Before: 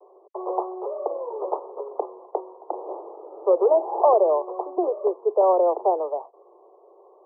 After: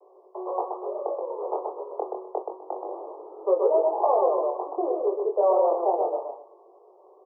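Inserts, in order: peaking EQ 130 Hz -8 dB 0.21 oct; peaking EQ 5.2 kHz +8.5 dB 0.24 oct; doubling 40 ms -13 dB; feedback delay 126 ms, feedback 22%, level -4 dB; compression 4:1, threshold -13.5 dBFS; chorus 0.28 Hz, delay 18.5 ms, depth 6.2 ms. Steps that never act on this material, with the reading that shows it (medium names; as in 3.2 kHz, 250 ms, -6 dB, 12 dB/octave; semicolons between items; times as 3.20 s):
peaking EQ 130 Hz: input has nothing below 290 Hz; peaking EQ 5.2 kHz: input has nothing above 1.2 kHz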